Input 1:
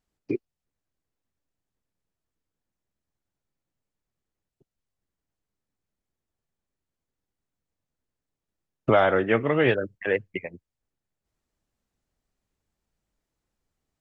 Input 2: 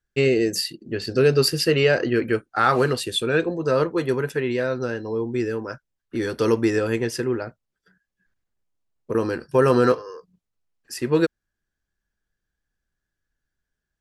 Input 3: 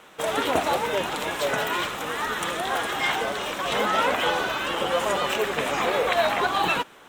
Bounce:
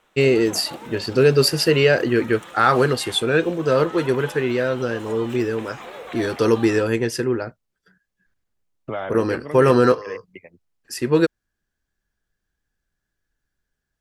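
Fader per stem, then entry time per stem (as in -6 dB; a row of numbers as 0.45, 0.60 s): -9.5, +2.5, -13.5 dB; 0.00, 0.00, 0.00 s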